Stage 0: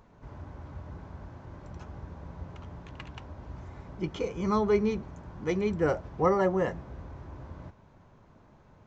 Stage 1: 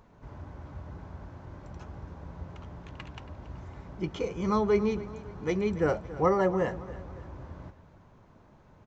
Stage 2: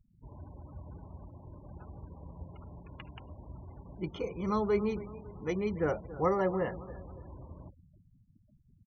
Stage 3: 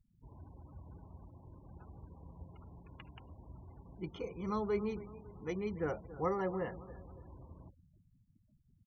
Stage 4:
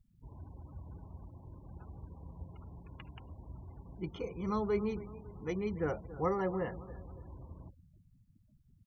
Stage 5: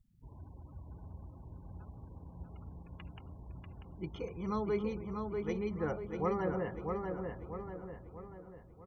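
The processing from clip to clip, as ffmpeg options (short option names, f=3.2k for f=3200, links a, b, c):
-af "aecho=1:1:278|556|834|1112:0.15|0.0643|0.0277|0.0119"
-af "afftfilt=real='re*gte(hypot(re,im),0.00708)':imag='im*gte(hypot(re,im),0.00708)':win_size=1024:overlap=0.75,volume=-4dB"
-af "bandreject=f=590:w=12,volume=-5.5dB"
-af "lowshelf=f=140:g=4,volume=1.5dB"
-filter_complex "[0:a]asplit=2[a][b];[b]adelay=641,lowpass=f=3.1k:p=1,volume=-4dB,asplit=2[c][d];[d]adelay=641,lowpass=f=3.1k:p=1,volume=0.48,asplit=2[e][f];[f]adelay=641,lowpass=f=3.1k:p=1,volume=0.48,asplit=2[g][h];[h]adelay=641,lowpass=f=3.1k:p=1,volume=0.48,asplit=2[i][j];[j]adelay=641,lowpass=f=3.1k:p=1,volume=0.48,asplit=2[k][l];[l]adelay=641,lowpass=f=3.1k:p=1,volume=0.48[m];[a][c][e][g][i][k][m]amix=inputs=7:normalize=0,volume=-1.5dB"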